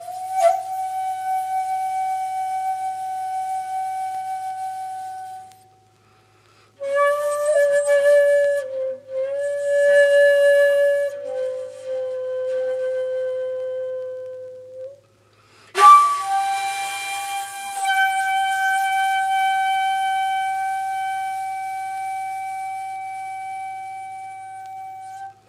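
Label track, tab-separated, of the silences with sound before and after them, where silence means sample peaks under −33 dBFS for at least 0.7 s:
5.520000	6.810000	silence
14.880000	15.750000	silence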